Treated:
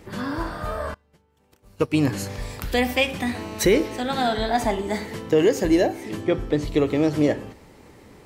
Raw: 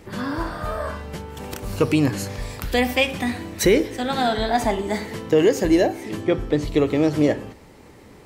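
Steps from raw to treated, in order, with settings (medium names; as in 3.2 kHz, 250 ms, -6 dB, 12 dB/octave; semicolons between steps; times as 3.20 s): 0.94–1.94 s: upward expansion 2.5:1, over -33 dBFS; 3.35–4.00 s: mobile phone buzz -36 dBFS; trim -1.5 dB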